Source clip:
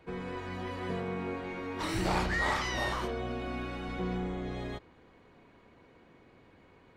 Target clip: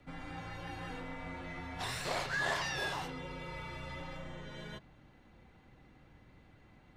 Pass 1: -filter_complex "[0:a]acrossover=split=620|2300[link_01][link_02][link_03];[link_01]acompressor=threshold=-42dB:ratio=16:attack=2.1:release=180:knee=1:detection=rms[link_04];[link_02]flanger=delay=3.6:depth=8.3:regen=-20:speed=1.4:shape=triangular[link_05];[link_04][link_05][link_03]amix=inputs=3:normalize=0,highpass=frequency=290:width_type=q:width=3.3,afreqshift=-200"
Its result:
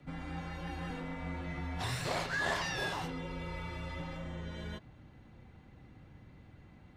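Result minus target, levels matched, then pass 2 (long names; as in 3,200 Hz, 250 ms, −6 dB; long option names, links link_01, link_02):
250 Hz band +3.5 dB
-filter_complex "[0:a]acrossover=split=620|2300[link_01][link_02][link_03];[link_01]acompressor=threshold=-42dB:ratio=16:attack=2.1:release=180:knee=1:detection=rms[link_04];[link_02]flanger=delay=3.6:depth=8.3:regen=-20:speed=1.4:shape=triangular[link_05];[link_04][link_05][link_03]amix=inputs=3:normalize=0,afreqshift=-200"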